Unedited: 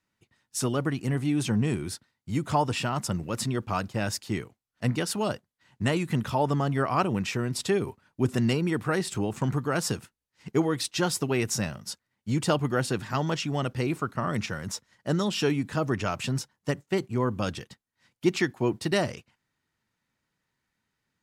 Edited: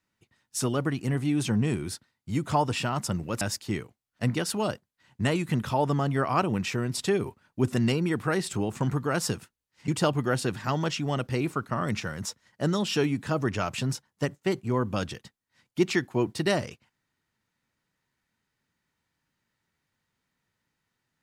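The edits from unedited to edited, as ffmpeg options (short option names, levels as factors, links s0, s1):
-filter_complex "[0:a]asplit=3[s0][s1][s2];[s0]atrim=end=3.412[s3];[s1]atrim=start=4.018:end=10.492[s4];[s2]atrim=start=12.338[s5];[s3][s4]acrossfade=d=0.004:c1=hsin:c2=hsin[s6];[s6][s5]acrossfade=d=0.004:c1=hsin:c2=hsin"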